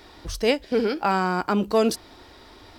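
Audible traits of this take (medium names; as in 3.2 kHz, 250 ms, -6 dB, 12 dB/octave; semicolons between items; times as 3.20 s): noise floor -49 dBFS; spectral tilt -4.0 dB/octave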